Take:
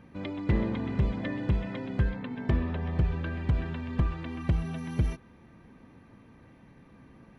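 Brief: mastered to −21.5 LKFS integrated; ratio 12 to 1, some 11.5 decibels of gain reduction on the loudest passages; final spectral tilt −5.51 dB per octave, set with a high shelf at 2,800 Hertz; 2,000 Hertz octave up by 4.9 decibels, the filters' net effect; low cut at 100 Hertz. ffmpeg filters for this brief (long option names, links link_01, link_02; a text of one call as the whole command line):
ffmpeg -i in.wav -af "highpass=100,equalizer=frequency=2000:width_type=o:gain=3.5,highshelf=frequency=2800:gain=6.5,acompressor=threshold=-34dB:ratio=12,volume=18dB" out.wav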